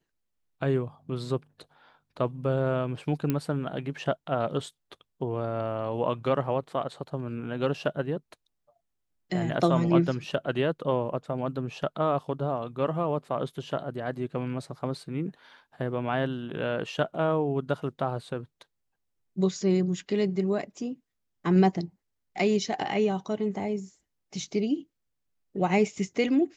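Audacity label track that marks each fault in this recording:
3.300000	3.300000	click −14 dBFS

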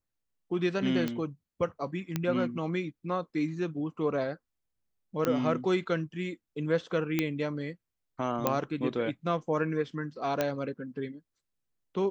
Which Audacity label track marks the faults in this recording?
1.080000	1.080000	click −18 dBFS
2.160000	2.160000	click −15 dBFS
5.250000	5.250000	click −14 dBFS
7.190000	7.190000	click −13 dBFS
8.470000	8.470000	click −11 dBFS
10.410000	10.410000	click −13 dBFS

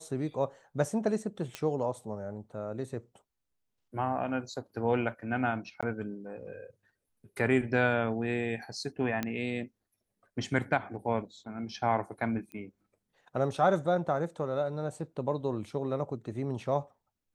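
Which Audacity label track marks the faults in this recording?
1.550000	1.550000	click −20 dBFS
5.810000	5.830000	drop-out 16 ms
9.230000	9.230000	click −17 dBFS
12.520000	12.520000	click −31 dBFS

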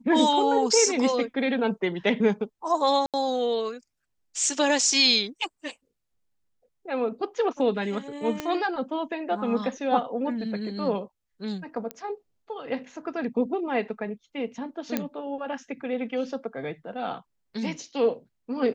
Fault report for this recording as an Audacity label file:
3.060000	3.140000	drop-out 77 ms
8.400000	8.400000	click −14 dBFS
11.910000	11.910000	click −17 dBFS
14.970000	14.970000	click −11 dBFS

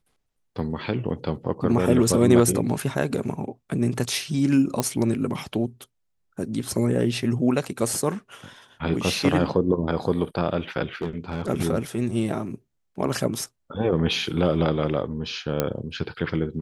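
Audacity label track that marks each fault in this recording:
4.800000	4.800000	click −8 dBFS
11.020000	11.490000	clipping −22.5 dBFS
15.600000	15.600000	click −7 dBFS

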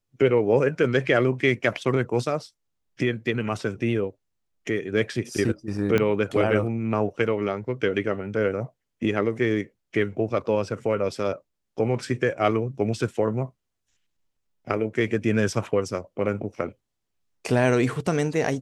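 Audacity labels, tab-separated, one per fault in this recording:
5.980000	5.980000	click −10 dBFS

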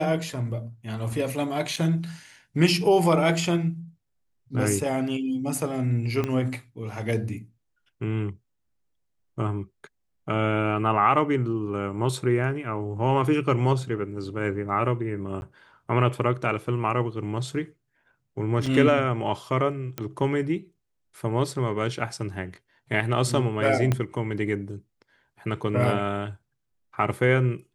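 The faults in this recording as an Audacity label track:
1.760000	1.770000	drop-out 5.7 ms
6.240000	6.240000	click −14 dBFS
15.410000	15.420000	drop-out 11 ms
18.660000	18.660000	drop-out 5 ms
19.980000	19.980000	click −15 dBFS
23.920000	23.920000	click −11 dBFS

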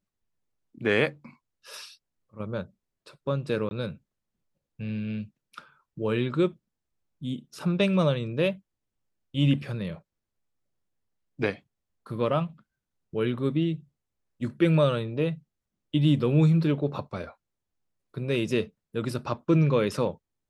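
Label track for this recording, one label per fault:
3.690000	3.710000	drop-out 20 ms

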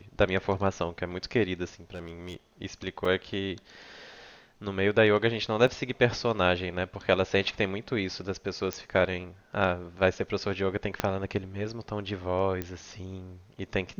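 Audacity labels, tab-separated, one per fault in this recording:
1.940000	2.360000	clipping −34 dBFS
3.050000	3.050000	drop-out 3.8 ms
5.670000	5.670000	drop-out 4.8 ms
8.730000	8.730000	click −15 dBFS
11.000000	11.000000	click −10 dBFS
12.620000	12.620000	click −18 dBFS

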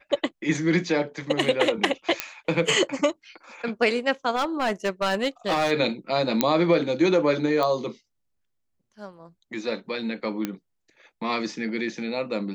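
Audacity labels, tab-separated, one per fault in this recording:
2.200000	2.200000	click −6 dBFS
4.350000	5.720000	clipping −19 dBFS
6.410000	6.410000	click −4 dBFS
7.630000	7.630000	click −14 dBFS
10.450000	10.450000	click −13 dBFS

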